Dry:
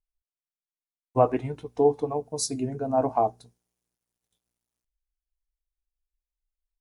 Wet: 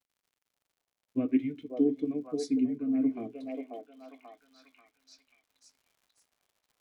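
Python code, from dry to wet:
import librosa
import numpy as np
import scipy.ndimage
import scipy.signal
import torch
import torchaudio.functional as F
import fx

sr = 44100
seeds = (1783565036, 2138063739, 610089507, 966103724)

p1 = fx.vowel_filter(x, sr, vowel='i')
p2 = fx.dmg_crackle(p1, sr, seeds[0], per_s=140.0, level_db=-68.0)
p3 = p2 + fx.echo_stepped(p2, sr, ms=538, hz=620.0, octaves=0.7, feedback_pct=70, wet_db=-1.0, dry=0)
p4 = fx.rider(p3, sr, range_db=4, speed_s=0.5)
y = p4 * 10.0 ** (7.5 / 20.0)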